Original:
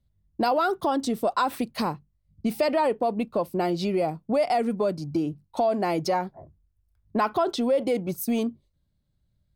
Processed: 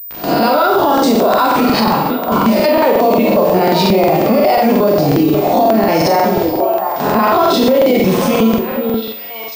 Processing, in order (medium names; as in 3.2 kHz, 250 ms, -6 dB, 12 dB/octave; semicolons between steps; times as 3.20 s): reverse spectral sustain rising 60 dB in 0.48 s; high-pass 50 Hz 6 dB/octave; bit crusher 8-bit; gate with hold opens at -34 dBFS; upward compressor, threshold -37 dBFS; repeats whose band climbs or falls 496 ms, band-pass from 370 Hz, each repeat 1.4 oct, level -8 dB; Schroeder reverb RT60 0.52 s, combs from 28 ms, DRR 1 dB; loudness maximiser +22 dB; crackling interface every 0.18 s, samples 2048, repeat, from 0.93 s; class-D stage that switches slowly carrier 15 kHz; trim -3 dB